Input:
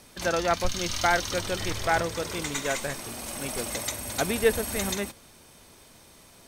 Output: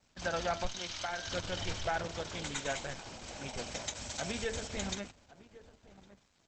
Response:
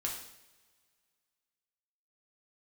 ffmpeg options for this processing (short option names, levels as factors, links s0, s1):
-filter_complex "[0:a]asplit=3[s0][s1][s2];[s0]afade=t=out:st=3.94:d=0.02[s3];[s1]aemphasis=mode=production:type=50kf,afade=t=in:st=3.94:d=0.02,afade=t=out:st=4.67:d=0.02[s4];[s2]afade=t=in:st=4.67:d=0.02[s5];[s3][s4][s5]amix=inputs=3:normalize=0,aecho=1:1:1.3:0.37,bandreject=f=112.9:t=h:w=4,bandreject=f=225.8:t=h:w=4,bandreject=f=338.7:t=h:w=4,bandreject=f=451.6:t=h:w=4,bandreject=f=564.5:t=h:w=4,bandreject=f=677.4:t=h:w=4,bandreject=f=790.3:t=h:w=4,bandreject=f=903.2:t=h:w=4,bandreject=f=1016.1:t=h:w=4,bandreject=f=1129:t=h:w=4,bandreject=f=1241.9:t=h:w=4,bandreject=f=1354.8:t=h:w=4,bandreject=f=1467.7:t=h:w=4,bandreject=f=1580.6:t=h:w=4,bandreject=f=1693.5:t=h:w=4,bandreject=f=1806.4:t=h:w=4,bandreject=f=1919.3:t=h:w=4,bandreject=f=2032.2:t=h:w=4,bandreject=f=2145.1:t=h:w=4,bandreject=f=2258:t=h:w=4,bandreject=f=2370.9:t=h:w=4,bandreject=f=2483.8:t=h:w=4,bandreject=f=2596.7:t=h:w=4,bandreject=f=2709.6:t=h:w=4,bandreject=f=2822.5:t=h:w=4,adynamicequalizer=threshold=0.00562:dfrequency=3200:dqfactor=3.1:tfrequency=3200:tqfactor=3.1:attack=5:release=100:ratio=0.375:range=2:mode=boostabove:tftype=bell,alimiter=limit=0.168:level=0:latency=1:release=137,asettb=1/sr,asplit=3[s6][s7][s8];[s6]atrim=end=0.674[s9];[s7]atrim=start=0.67:end=1.27,asetpts=PTS-STARTPTS,afade=t=in:d=0.004:c=qsin,afade=t=out:st=0.596:d=0.004:c=qsin,acrossover=split=110|430|1500|3700[s10][s11][s12][s13][s14];[s10]acompressor=threshold=0.00355:ratio=4[s15];[s11]acompressor=threshold=0.00562:ratio=4[s16];[s12]acompressor=threshold=0.0316:ratio=4[s17];[s13]acompressor=threshold=0.0224:ratio=4[s18];[s14]acompressor=threshold=0.0224:ratio=4[s19];[s15][s16][s17][s18][s19]amix=inputs=5:normalize=0[s20];[s8]atrim=start=1.266[s21];[s9][s20]acrossfade=d=0.004:c1=hsin:c2=qsin[s22];[s22][s21]acrossfade=d=0.004:c1=qsin:c2=hsin,aeval=exprs='sgn(val(0))*max(abs(val(0))-0.00224,0)':c=same,asettb=1/sr,asplit=3[s23][s24][s25];[s23]atrim=end=2.854[s26];[s24]atrim=start=2.85:end=3.38,asetpts=PTS-STARTPTS,afade=t=in:d=0.004:c=qsin,afade=t=out:st=0.526:d=0.004:c=qsin,aeval=exprs='0.112*(cos(1*acos(clip(val(0)/0.112,-1,1)))-cos(1*PI/2))+0.00316*(cos(4*acos(clip(val(0)/0.112,-1,1)))-cos(4*PI/2))':c=same[s27];[s25]atrim=start=3.376[s28];[s26][s27]acrossfade=d=0.004:c1=hsin:c2=qsin[s29];[s29][s28]acrossfade=d=0.004:c1=qsin:c2=hsin,asplit=2[s30][s31];[s31]adelay=1108,volume=0.141,highshelf=f=4000:g=-24.9[s32];[s30][s32]amix=inputs=2:normalize=0,aresample=32000,aresample=44100,volume=0.501" -ar 48000 -c:a libopus -b:a 12k